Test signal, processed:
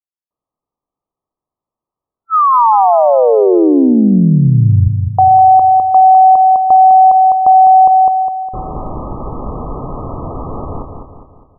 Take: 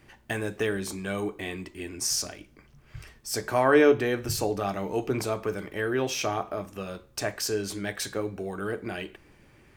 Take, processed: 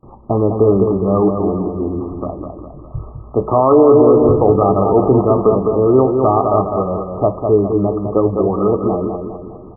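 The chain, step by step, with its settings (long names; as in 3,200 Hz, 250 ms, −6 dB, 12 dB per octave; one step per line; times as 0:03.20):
noise gate with hold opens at −49 dBFS
linear-phase brick-wall low-pass 1,300 Hz
repeating echo 204 ms, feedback 47%, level −6 dB
boost into a limiter +18 dB
level −1 dB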